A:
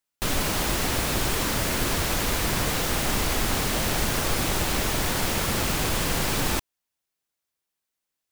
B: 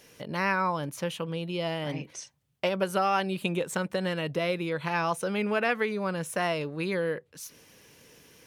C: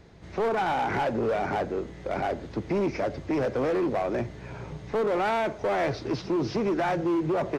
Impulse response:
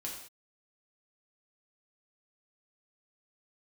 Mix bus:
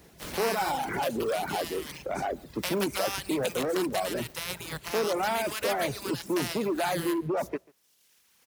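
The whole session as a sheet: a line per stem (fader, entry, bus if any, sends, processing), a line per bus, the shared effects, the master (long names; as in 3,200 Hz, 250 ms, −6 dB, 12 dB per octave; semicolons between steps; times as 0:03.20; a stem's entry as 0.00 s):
−4.0 dB, 0.00 s, no send, no echo send, brickwall limiter −23.5 dBFS, peak gain reduction 12 dB; automatic ducking −13 dB, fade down 1.45 s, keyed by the second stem
−5.5 dB, 0.00 s, no send, echo send −15.5 dB, compressing power law on the bin magnitudes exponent 0.31
−1.5 dB, 0.00 s, no send, echo send −16 dB, no processing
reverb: not used
echo: single-tap delay 141 ms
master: high-pass filter 52 Hz; reverb reduction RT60 1.1 s; parametric band 100 Hz −9.5 dB 0.44 octaves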